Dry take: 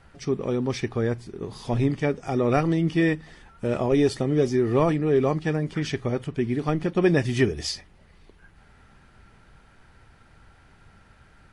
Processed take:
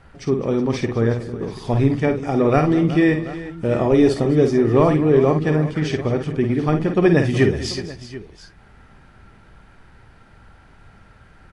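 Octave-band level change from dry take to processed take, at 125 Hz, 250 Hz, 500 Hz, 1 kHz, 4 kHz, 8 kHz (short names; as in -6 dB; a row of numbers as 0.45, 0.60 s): +6.0, +6.5, +6.0, +5.5, +2.5, +1.0 dB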